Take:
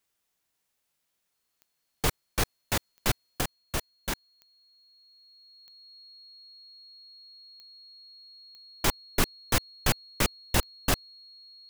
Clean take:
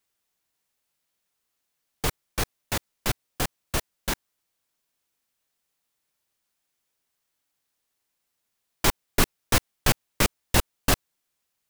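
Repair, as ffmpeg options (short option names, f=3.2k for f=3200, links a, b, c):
-af "adeclick=t=4,bandreject=f=4.3k:w=30,asetnsamples=n=441:p=0,asendcmd='3.41 volume volume 4dB',volume=0dB"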